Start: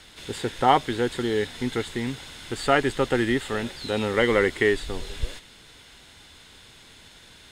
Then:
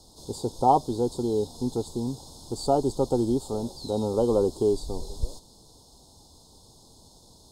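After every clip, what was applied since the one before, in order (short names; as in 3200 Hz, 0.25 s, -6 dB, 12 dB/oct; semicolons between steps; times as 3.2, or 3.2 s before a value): Chebyshev band-stop 920–4500 Hz, order 3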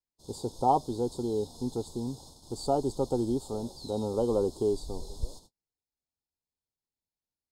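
gate -45 dBFS, range -41 dB; gain -4.5 dB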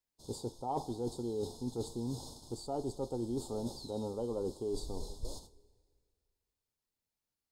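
two-slope reverb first 0.39 s, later 1.9 s, from -16 dB, DRR 14 dB; reverse; compressor 6:1, threshold -37 dBFS, peak gain reduction 17 dB; reverse; gain +2.5 dB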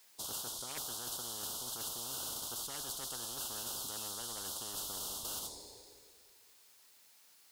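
HPF 1200 Hz 6 dB/oct; spectral compressor 10:1; gain +3.5 dB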